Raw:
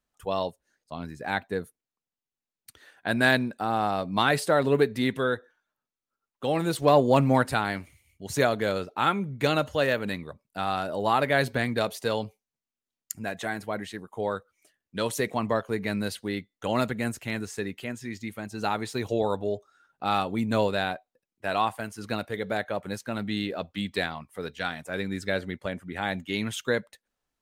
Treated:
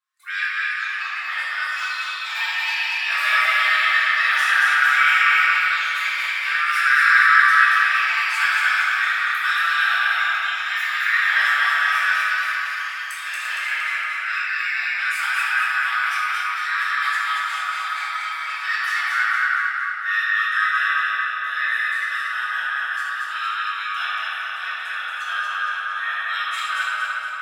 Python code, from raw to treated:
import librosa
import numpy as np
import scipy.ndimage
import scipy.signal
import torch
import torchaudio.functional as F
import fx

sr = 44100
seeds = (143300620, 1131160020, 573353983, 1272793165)

y = fx.band_swap(x, sr, width_hz=1000)
y = fx.echo_pitch(y, sr, ms=80, semitones=6, count=3, db_per_echo=-6.0)
y = scipy.signal.sosfilt(scipy.signal.butter(4, 1200.0, 'highpass', fs=sr, output='sos'), y)
y = fx.high_shelf(y, sr, hz=4900.0, db=-4.5)
y = fx.echo_feedback(y, sr, ms=231, feedback_pct=52, wet_db=-3.0)
y = fx.room_shoebox(y, sr, seeds[0], volume_m3=200.0, walls='hard', distance_m=1.7)
y = y * librosa.db_to_amplitude(-4.5)